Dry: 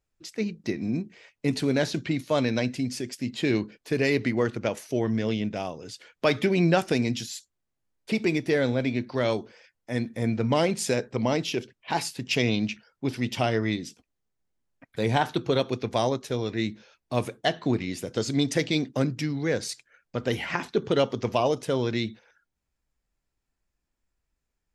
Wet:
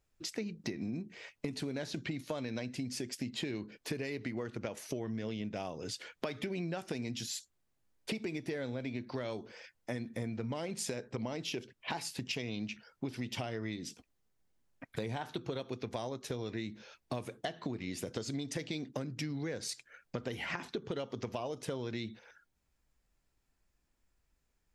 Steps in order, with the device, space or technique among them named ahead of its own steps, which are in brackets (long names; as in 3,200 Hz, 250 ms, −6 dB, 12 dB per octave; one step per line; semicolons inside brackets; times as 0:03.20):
serial compression, leveller first (downward compressor 2.5 to 1, threshold −27 dBFS, peak gain reduction 7.5 dB; downward compressor 5 to 1, threshold −39 dBFS, peak gain reduction 14.5 dB)
level +3 dB